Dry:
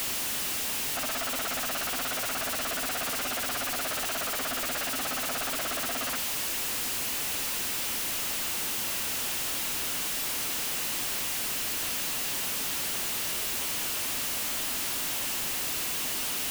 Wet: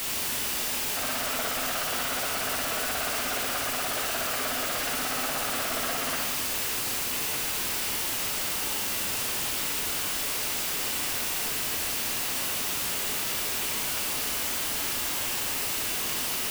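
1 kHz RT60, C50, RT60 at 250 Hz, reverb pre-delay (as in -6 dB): 1.5 s, 0.5 dB, 1.8 s, 18 ms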